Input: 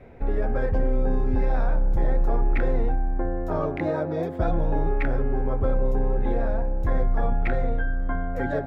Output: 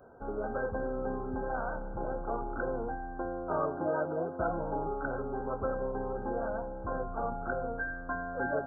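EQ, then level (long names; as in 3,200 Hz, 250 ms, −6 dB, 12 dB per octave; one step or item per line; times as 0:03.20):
linear-phase brick-wall low-pass 1,600 Hz
dynamic equaliser 210 Hz, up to +4 dB, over −51 dBFS, Q 5.2
spectral tilt +4 dB per octave
−1.5 dB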